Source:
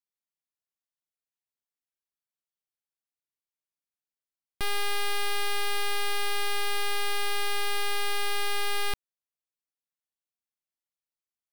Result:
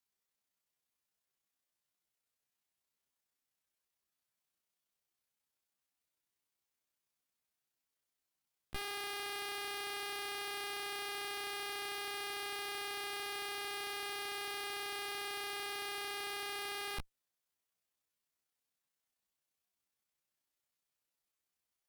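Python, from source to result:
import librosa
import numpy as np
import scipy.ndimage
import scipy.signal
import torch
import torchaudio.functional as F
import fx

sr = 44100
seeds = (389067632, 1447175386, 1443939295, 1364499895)

y = fx.stretch_grains(x, sr, factor=1.9, grain_ms=64.0)
y = fx.tube_stage(y, sr, drive_db=44.0, bias=0.55)
y = y * 10.0 ** (9.0 / 20.0)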